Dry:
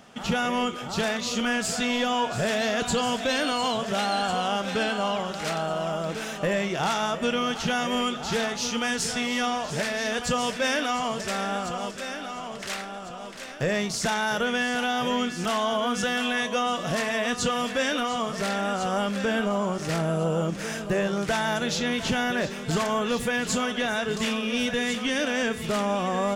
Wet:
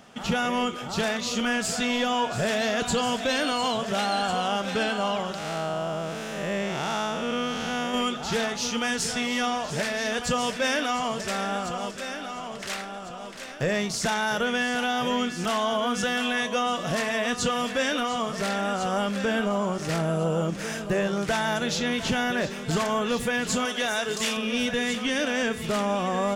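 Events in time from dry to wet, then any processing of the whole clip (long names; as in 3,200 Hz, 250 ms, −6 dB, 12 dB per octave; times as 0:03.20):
0:05.38–0:07.94: spectrum smeared in time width 222 ms
0:23.65–0:24.37: bass and treble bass −9 dB, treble +7 dB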